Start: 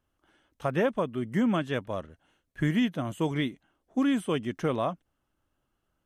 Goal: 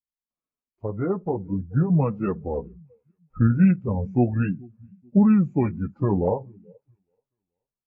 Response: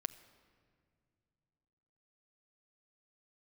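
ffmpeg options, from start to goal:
-filter_complex "[0:a]asetrate=33957,aresample=44100,tiltshelf=frequency=1100:gain=4.5,asplit=2[link_01][link_02];[link_02]adelay=64,lowpass=frequency=4600:poles=1,volume=-22dB,asplit=2[link_03][link_04];[link_04]adelay=64,lowpass=frequency=4600:poles=1,volume=0.34[link_05];[link_03][link_05]amix=inputs=2:normalize=0[link_06];[link_01][link_06]amix=inputs=2:normalize=0,flanger=delay=3.5:depth=7.7:regen=-17:speed=0.4:shape=triangular,asplit=2[link_07][link_08];[link_08]aecho=0:1:429|858|1287:0.075|0.0382|0.0195[link_09];[link_07][link_09]amix=inputs=2:normalize=0,afftdn=noise_reduction=29:noise_floor=-36,dynaudnorm=framelen=570:gausssize=5:maxgain=9dB,adynamicequalizer=threshold=0.02:dfrequency=320:dqfactor=3.6:tfrequency=320:tqfactor=3.6:attack=5:release=100:ratio=0.375:range=2:mode=cutabove:tftype=bell,volume=-3dB" -ar 32000 -c:a aac -b:a 24k

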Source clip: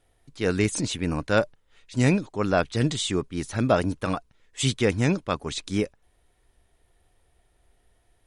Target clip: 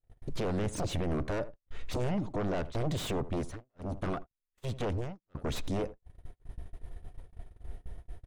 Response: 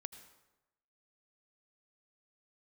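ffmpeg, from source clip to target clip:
-filter_complex "[0:a]lowshelf=frequency=160:gain=10,acompressor=threshold=-33dB:ratio=4,alimiter=level_in=3dB:limit=-24dB:level=0:latency=1:release=246,volume=-3dB,aeval=exprs='0.0447*sin(PI/2*3.16*val(0)/0.0447)':channel_layout=same,highshelf=frequency=2100:gain=-11.5,bandreject=frequency=830:width=26,asplit=2[link_01][link_02];[link_02]adelay=82,lowpass=frequency=1200:poles=1,volume=-15dB,asplit=2[link_03][link_04];[link_04]adelay=82,lowpass=frequency=1200:poles=1,volume=0.22[link_05];[link_01][link_03][link_05]amix=inputs=3:normalize=0,asettb=1/sr,asplit=3[link_06][link_07][link_08];[link_06]atrim=end=3.294[link_09];[link_07]atrim=start=3.29:end=5.35,asetpts=PTS-STARTPTS,afade=type=in:duration=0.004:curve=qsin,afade=type=out:start_time=2.056:duration=0.004:curve=qsin,tremolo=f=1.3:d=0.8[link_10];[link_08]atrim=start=5.346[link_11];[link_09][link_10]acrossfade=duration=0.004:curve1=hsin:curve2=qsin[link_12];[link_12][link_11]acrossfade=duration=0.004:curve1=qsin:curve2=hsin,agate=range=-41dB:threshold=-39dB:ratio=16:detection=peak"

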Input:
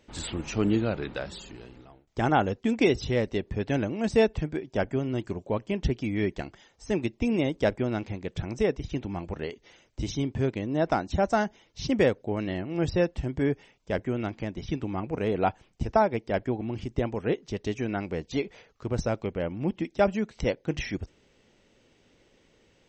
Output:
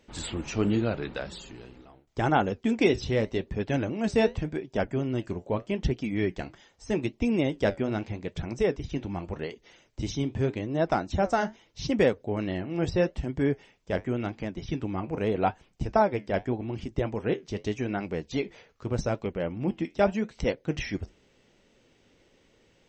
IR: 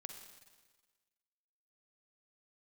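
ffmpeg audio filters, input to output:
-af "flanger=delay=4:depth=8.5:regen=-68:speed=0.83:shape=triangular,volume=4dB"

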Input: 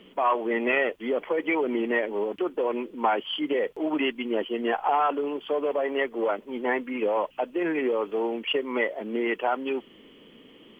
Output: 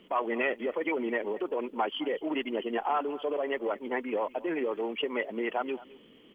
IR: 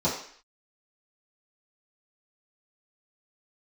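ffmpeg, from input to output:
-af "aecho=1:1:365:0.112,atempo=1.7,volume=-4.5dB"

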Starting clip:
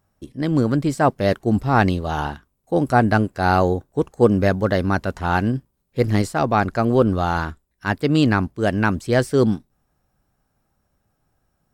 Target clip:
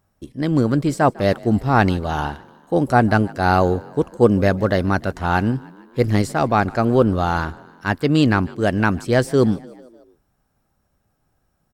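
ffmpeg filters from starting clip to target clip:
ffmpeg -i in.wav -filter_complex "[0:a]asplit=5[link_01][link_02][link_03][link_04][link_05];[link_02]adelay=150,afreqshift=41,volume=-23dB[link_06];[link_03]adelay=300,afreqshift=82,volume=-27.4dB[link_07];[link_04]adelay=450,afreqshift=123,volume=-31.9dB[link_08];[link_05]adelay=600,afreqshift=164,volume=-36.3dB[link_09];[link_01][link_06][link_07][link_08][link_09]amix=inputs=5:normalize=0,volume=1dB" out.wav

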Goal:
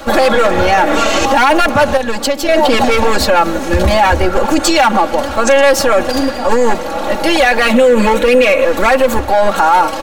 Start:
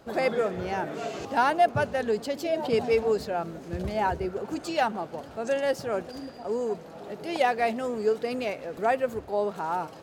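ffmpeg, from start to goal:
ffmpeg -i in.wav -filter_complex "[0:a]acrossover=split=280|610|2200[link_01][link_02][link_03][link_04];[link_02]aeval=exprs='max(val(0),0)':channel_layout=same[link_05];[link_01][link_05][link_03][link_04]amix=inputs=4:normalize=0,asettb=1/sr,asplit=3[link_06][link_07][link_08];[link_06]atrim=end=7.734[link_09];[link_07]atrim=start=7.73:end=8.65,asetpts=PTS-STARTPTS,afade=type=in:duration=0.004:curve=qsin,afade=type=out:start_time=0.916:duration=0.004:curve=qsin,equalizer=frequency=200:width_type=o:width=0.33:gain=8,equalizer=frequency=500:width_type=o:width=0.33:gain=10,equalizer=frequency=800:width_type=o:width=0.33:gain=-6,equalizer=frequency=2500:width_type=o:width=0.33:gain=7,equalizer=frequency=5000:width_type=o:width=0.33:gain=-10[link_10];[link_08]atrim=start=8.646[link_11];[link_09][link_10]acrossfade=duration=0.004:curve1=hsin:curve2=qsin[link_12];[link_12][link_11]acrossfade=duration=0.004:curve1=qsin:curve2=hsin,aeval=exprs='clip(val(0),-1,0.0562)':channel_layout=same,bandreject=frequency=4900:width=13,aecho=1:1:3.6:0.9,asettb=1/sr,asplit=3[link_13][link_14][link_15];[link_13]atrim=end=1.974[link_16];[link_14]atrim=start=1.97:end=2.49,asetpts=PTS-STARTPTS,afade=type=in:duration=0.004:curve=qsin,afade=type=out:start_time=0.516:duration=0.004:curve=qsin,acompressor=threshold=-35dB:ratio=10[link_17];[link_15]atrim=start=2.486[link_18];[link_16][link_17]acrossfade=duration=0.004:curve1=hsin:curve2=qsin[link_19];[link_19][link_18]acrossfade=duration=0.004:curve1=qsin:curve2=hsin,equalizer=frequency=170:width_type=o:width=1.5:gain=-9,alimiter=level_in=26dB:limit=-1dB:release=50:level=0:latency=1,volume=-1dB" out.wav

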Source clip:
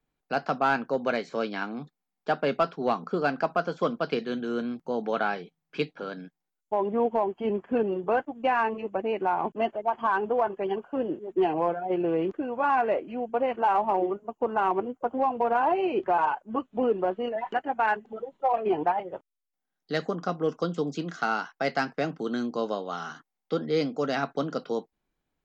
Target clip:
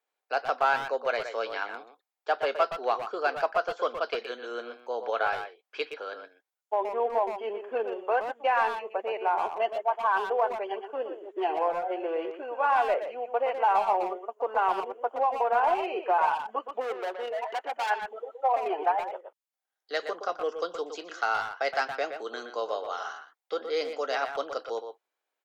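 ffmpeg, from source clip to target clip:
ffmpeg -i in.wav -filter_complex "[0:a]asplit=3[link_01][link_02][link_03];[link_01]afade=type=out:start_time=16.8:duration=0.02[link_04];[link_02]volume=27.5dB,asoftclip=hard,volume=-27.5dB,afade=type=in:start_time=16.8:duration=0.02,afade=type=out:start_time=17.89:duration=0.02[link_05];[link_03]afade=type=in:start_time=17.89:duration=0.02[link_06];[link_04][link_05][link_06]amix=inputs=3:normalize=0,highpass=frequency=470:width=0.5412,highpass=frequency=470:width=1.3066,asplit=2[link_07][link_08];[link_08]adelay=120,highpass=300,lowpass=3400,asoftclip=type=hard:threshold=-23dB,volume=-7dB[link_09];[link_07][link_09]amix=inputs=2:normalize=0" out.wav

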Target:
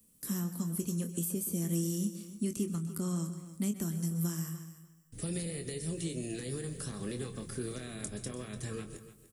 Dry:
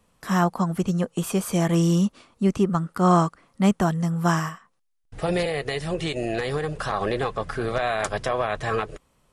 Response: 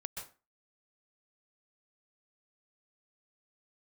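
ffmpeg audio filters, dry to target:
-filter_complex "[0:a]aemphasis=mode=production:type=riaa,asplit=2[link_01][link_02];[link_02]adelay=24,volume=-8.5dB[link_03];[link_01][link_03]amix=inputs=2:normalize=0,acrossover=split=330|1000[link_04][link_05][link_06];[link_04]acompressor=threshold=-40dB:ratio=4[link_07];[link_05]acompressor=threshold=-38dB:ratio=4[link_08];[link_06]acompressor=threshold=-31dB:ratio=4[link_09];[link_07][link_08][link_09]amix=inputs=3:normalize=0,firequalizer=gain_entry='entry(240,0);entry(720,-28);entry(1900,-23);entry(9000,-11)':delay=0.05:min_phase=1,aecho=1:1:295|590:0.188|0.0339,asplit=2[link_10][link_11];[1:a]atrim=start_sample=2205[link_12];[link_11][link_12]afir=irnorm=-1:irlink=0,volume=-4.5dB[link_13];[link_10][link_13]amix=inputs=2:normalize=0,volume=2.5dB"

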